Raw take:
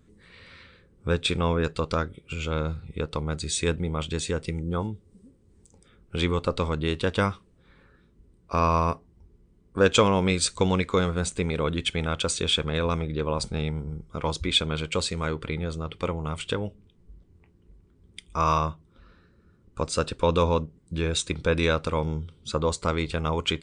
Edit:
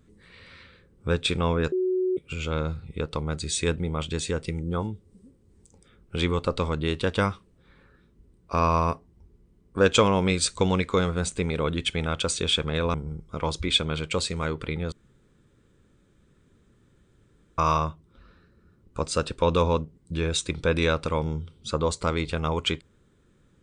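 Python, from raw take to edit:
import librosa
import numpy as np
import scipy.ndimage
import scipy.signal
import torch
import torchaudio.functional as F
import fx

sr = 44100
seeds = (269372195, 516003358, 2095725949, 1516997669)

y = fx.edit(x, sr, fx.bleep(start_s=1.72, length_s=0.45, hz=370.0, db=-21.5),
    fx.cut(start_s=12.94, length_s=0.81),
    fx.room_tone_fill(start_s=15.73, length_s=2.66), tone=tone)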